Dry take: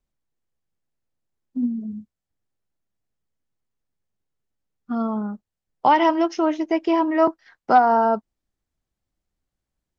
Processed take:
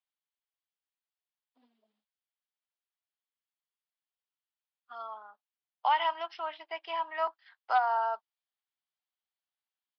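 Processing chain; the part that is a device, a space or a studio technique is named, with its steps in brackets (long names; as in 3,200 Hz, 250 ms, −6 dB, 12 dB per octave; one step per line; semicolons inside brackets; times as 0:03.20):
0:05.14–0:07.15: high-shelf EQ 5,500 Hz −7.5 dB
musical greeting card (downsampling to 11,025 Hz; high-pass filter 790 Hz 24 dB per octave; parametric band 3,200 Hz +7 dB 0.52 octaves)
level −8 dB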